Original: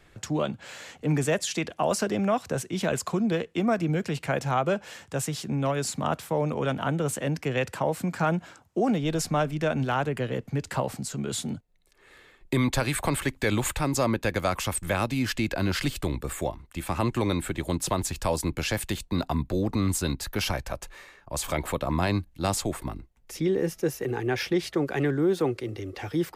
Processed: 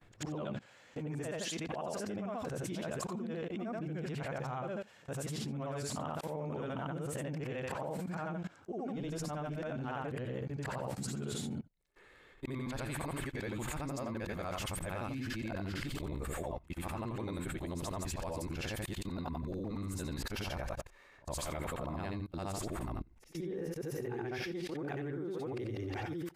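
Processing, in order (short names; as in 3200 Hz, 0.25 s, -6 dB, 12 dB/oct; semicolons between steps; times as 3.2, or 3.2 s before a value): short-time reversal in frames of 0.185 s; high shelf 2900 Hz -8 dB; level quantiser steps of 22 dB; gain +5.5 dB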